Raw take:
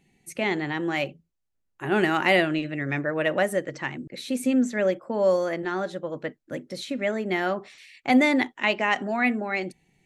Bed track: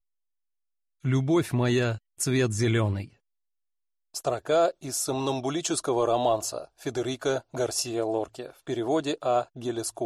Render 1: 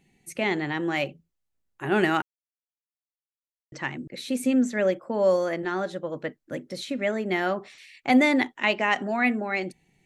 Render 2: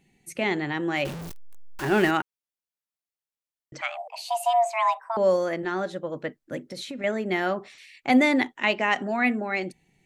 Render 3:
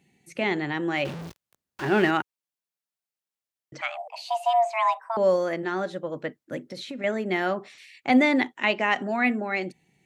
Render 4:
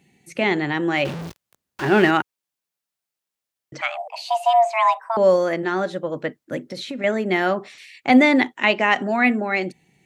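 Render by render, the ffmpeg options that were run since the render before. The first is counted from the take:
-filter_complex "[0:a]asplit=3[a][b][c];[a]atrim=end=2.22,asetpts=PTS-STARTPTS,afade=t=out:st=2.216:d=0.004:c=hsin[d];[b]atrim=start=2.22:end=3.72,asetpts=PTS-STARTPTS,volume=0[e];[c]atrim=start=3.72,asetpts=PTS-STARTPTS,afade=t=in:d=0.004:c=hsin[f];[d][e][f]concat=n=3:v=0:a=1"
-filter_complex "[0:a]asettb=1/sr,asplit=3[a][b][c];[a]atrim=end=1.054[d];[b]atrim=start=1.05:end=2.11,asetpts=PTS-STARTPTS,afade=t=in:d=0.004:c=qsin,afade=t=out:st=1.056:d=0.004:c=qsin,aeval=exprs='val(0)+0.5*0.0316*sgn(val(0))':c=same[e];[c]atrim=start=2.106[f];[d][e]acrossfade=d=0.004:c1=hsin:c2=qsin[g];[g][f]acrossfade=d=0.004:c1=qsin:c2=hsin,asettb=1/sr,asplit=3[h][i][j];[h]atrim=end=3.814[k];[i]atrim=start=3.81:end=5.17,asetpts=PTS-STARTPTS,afade=t=in:d=0.004:c=qsin,afade=t=out:st=1.356:d=0.004:c=qsin,afreqshift=450[l];[j]atrim=start=5.166[m];[k][l]acrossfade=d=0.004:c1=hsin:c2=qsin[n];[n][m]acrossfade=d=0.004:c1=qsin:c2=hsin,asettb=1/sr,asplit=3[o][p][q];[o]atrim=end=6.584[r];[p]atrim=start=6.58:end=7.04,asetpts=PTS-STARTPTS,afade=t=in:d=0.004:c=qsin,afade=t=out:st=0.456:d=0.004:c=qsin,acompressor=threshold=-31dB:ratio=6:attack=3.2:release=140:knee=1:detection=peak[s];[q]atrim=start=7.036[t];[r][s]acrossfade=d=0.004:c1=hsin:c2=qsin[u];[u][t]acrossfade=d=0.004:c1=qsin:c2=hsin"
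-filter_complex "[0:a]highpass=86,acrossover=split=5600[a][b];[b]acompressor=threshold=-54dB:ratio=4:attack=1:release=60[c];[a][c]amix=inputs=2:normalize=0"
-af "volume=5.5dB"

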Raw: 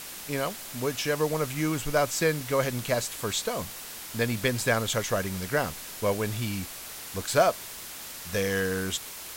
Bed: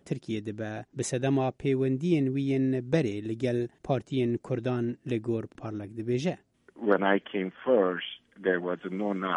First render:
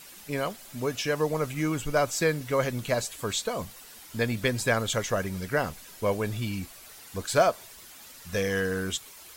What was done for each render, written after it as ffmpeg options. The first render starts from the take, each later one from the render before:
-af "afftdn=nr=10:nf=-41"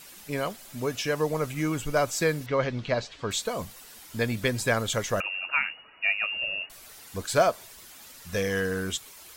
-filter_complex "[0:a]asettb=1/sr,asplit=3[a][b][c];[a]atrim=end=2.464[d];[b]atrim=start=2.46:end=3.31,asetpts=PTS-STARTPTS,afade=t=in:d=0.004:c=qsin,afade=t=out:st=0.846:d=0.004:c=qsin,lowpass=f=4.9k:w=0.5412,lowpass=f=4.9k:w=1.3066[e];[c]atrim=start=3.306[f];[d][e]acrossfade=d=0.004:c1=hsin:c2=qsin[g];[g][f]acrossfade=d=0.004:c1=qsin:c2=hsin,asettb=1/sr,asplit=3[h][i][j];[h]atrim=end=5.204[k];[i]atrim=start=5.2:end=6.7,asetpts=PTS-STARTPTS,afade=t=in:d=0.004:c=qsin,afade=t=out:st=1.496:d=0.004:c=qsin,lowpass=f=2.5k:t=q:w=0.5098,lowpass=f=2.5k:t=q:w=0.6013,lowpass=f=2.5k:t=q:w=0.9,lowpass=f=2.5k:t=q:w=2.563,afreqshift=-2900[l];[j]atrim=start=6.696[m];[k][l]acrossfade=d=0.004:c1=hsin:c2=qsin[n];[n][m]acrossfade=d=0.004:c1=qsin:c2=hsin"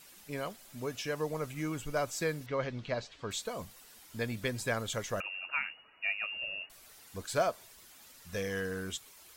-af "volume=-8dB"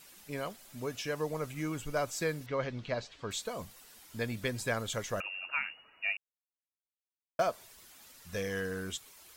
-filter_complex "[0:a]asplit=3[a][b][c];[a]atrim=end=6.17,asetpts=PTS-STARTPTS,afade=t=out:st=6.166:d=0.004:c=hsin[d];[b]atrim=start=6.17:end=7.39,asetpts=PTS-STARTPTS,volume=0[e];[c]atrim=start=7.39,asetpts=PTS-STARTPTS,afade=t=in:d=0.004:c=hsin[f];[d][e][f]concat=n=3:v=0:a=1"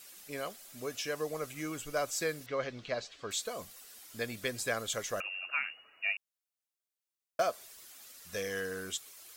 -af "bass=f=250:g=-9,treble=f=4k:g=4,bandreject=f=920:w=7"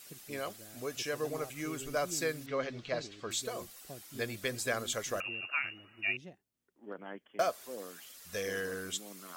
-filter_complex "[1:a]volume=-21dB[a];[0:a][a]amix=inputs=2:normalize=0"

